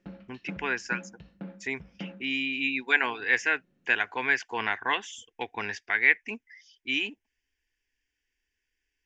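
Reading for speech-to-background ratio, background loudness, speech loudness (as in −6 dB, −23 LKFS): 17.0 dB, −44.5 LKFS, −27.5 LKFS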